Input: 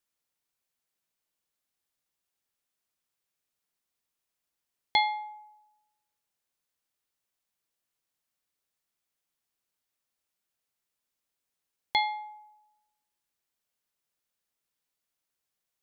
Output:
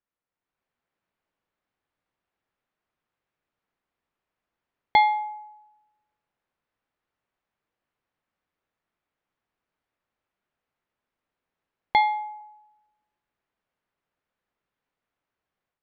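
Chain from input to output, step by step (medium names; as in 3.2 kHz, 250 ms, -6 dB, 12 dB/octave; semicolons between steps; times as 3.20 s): low-pass 1.9 kHz 12 dB/octave; level rider gain up to 8.5 dB; 12.01–12.41 s: high-pass 450 Hz 12 dB/octave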